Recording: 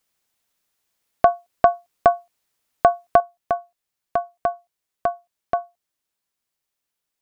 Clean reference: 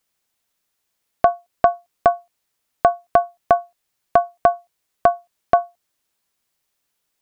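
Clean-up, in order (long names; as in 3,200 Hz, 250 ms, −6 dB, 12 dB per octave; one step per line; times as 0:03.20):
level 0 dB, from 0:03.20 +7.5 dB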